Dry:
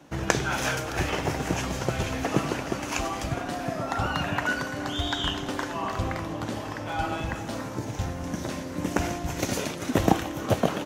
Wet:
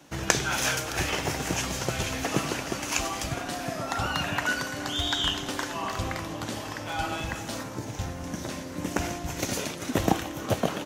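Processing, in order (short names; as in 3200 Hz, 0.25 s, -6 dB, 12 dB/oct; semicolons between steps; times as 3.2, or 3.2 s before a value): high shelf 2300 Hz +9.5 dB, from 7.63 s +4.5 dB; gain -3 dB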